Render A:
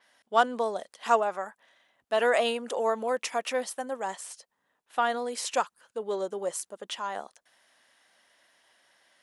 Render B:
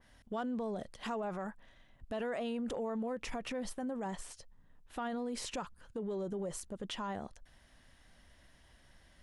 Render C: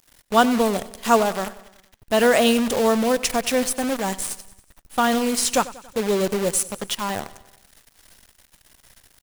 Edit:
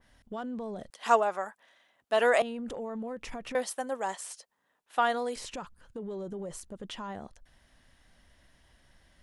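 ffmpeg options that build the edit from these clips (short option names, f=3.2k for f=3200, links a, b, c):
-filter_complex "[0:a]asplit=2[a][b];[1:a]asplit=3[c][d][e];[c]atrim=end=0.902[f];[a]atrim=start=0.898:end=2.422[g];[d]atrim=start=2.418:end=3.552[h];[b]atrim=start=3.548:end=5.362[i];[e]atrim=start=5.358[j];[f][g]acrossfade=d=0.004:c1=hsin:c2=hsin[k];[k][h]acrossfade=d=0.004:c1=hsin:c2=hsin[l];[l][i]acrossfade=d=0.004:c1=hsin:c2=hsin[m];[m][j]acrossfade=d=0.004:c1=hsin:c2=hsin"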